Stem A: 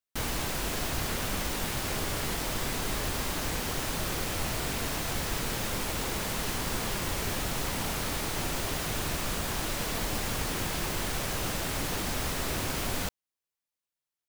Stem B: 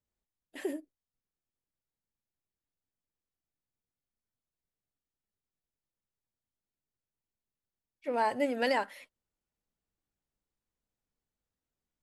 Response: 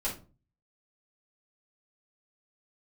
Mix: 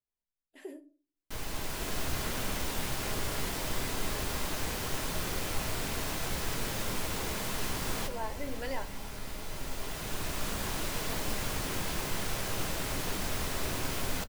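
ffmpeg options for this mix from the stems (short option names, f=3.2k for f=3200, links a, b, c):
-filter_complex "[0:a]adelay=1150,volume=-4dB,asplit=2[a][b];[b]volume=-14dB[c];[1:a]volume=-11.5dB,asplit=3[d][e][f];[e]volume=-10dB[g];[f]apad=whole_len=680509[h];[a][h]sidechaincompress=threshold=-56dB:ratio=5:attack=6.1:release=1160[i];[2:a]atrim=start_sample=2205[j];[c][g]amix=inputs=2:normalize=0[k];[k][j]afir=irnorm=-1:irlink=0[l];[i][d][l]amix=inputs=3:normalize=0"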